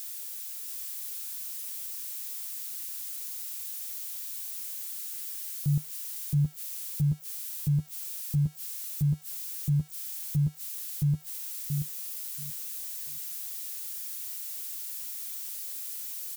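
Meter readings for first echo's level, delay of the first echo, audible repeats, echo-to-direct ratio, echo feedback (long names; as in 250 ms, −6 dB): −4.5 dB, 682 ms, 3, −4.5 dB, 18%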